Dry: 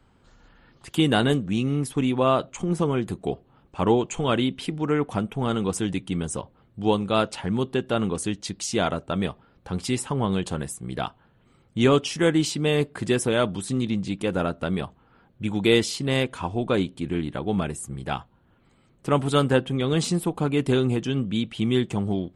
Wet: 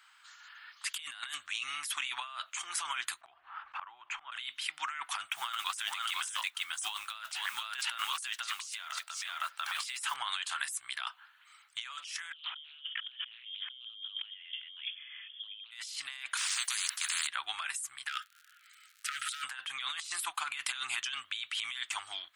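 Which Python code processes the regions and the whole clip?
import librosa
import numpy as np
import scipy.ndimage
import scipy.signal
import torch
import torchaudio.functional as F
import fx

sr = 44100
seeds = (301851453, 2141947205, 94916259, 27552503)

y = fx.chain(x, sr, fx.lowpass(hz=1400.0, slope=12),
    fx.gate_flip(shuts_db=-24.0, range_db=-27),
    fx.env_flatten(amount_pct=70), at=(3.21, 4.32))
y = fx.chain(y, sr, fx.block_float(bits=7),
    fx.echo_single(ms=495, db=-4.5), at=(5.31, 10.16))
y = fx.chain(y, sr, fx.freq_invert(carrier_hz=3400),
    fx.doppler_dist(depth_ms=0.29), at=(12.33, 15.71))
y = fx.chain(y, sr, fx.highpass(hz=960.0, slope=24),
    fx.spectral_comp(ratio=10.0), at=(16.37, 17.27))
y = fx.overload_stage(y, sr, gain_db=21.0, at=(18.07, 19.42), fade=0.02)
y = fx.dmg_crackle(y, sr, seeds[0], per_s=100.0, level_db=-52.0, at=(18.07, 19.42), fade=0.02)
y = fx.brickwall_bandstop(y, sr, low_hz=170.0, high_hz=1200.0, at=(18.07, 19.42), fade=0.02)
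y = scipy.signal.sosfilt(scipy.signal.cheby2(4, 50, 500.0, 'highpass', fs=sr, output='sos'), y)
y = fx.over_compress(y, sr, threshold_db=-42.0, ratio=-1.0)
y = y * librosa.db_to_amplitude(1.0)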